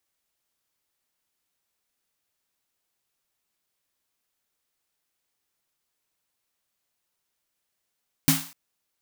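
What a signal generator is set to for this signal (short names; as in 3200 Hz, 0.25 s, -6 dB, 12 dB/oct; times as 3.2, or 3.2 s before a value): snare drum length 0.25 s, tones 160 Hz, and 270 Hz, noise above 710 Hz, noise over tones -1 dB, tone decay 0.29 s, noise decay 0.44 s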